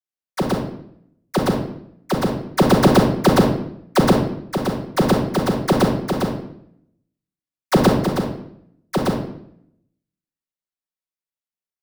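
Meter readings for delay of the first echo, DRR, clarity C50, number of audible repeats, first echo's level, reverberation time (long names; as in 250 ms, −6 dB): no echo audible, −7.5 dB, 4.5 dB, no echo audible, no echo audible, 0.70 s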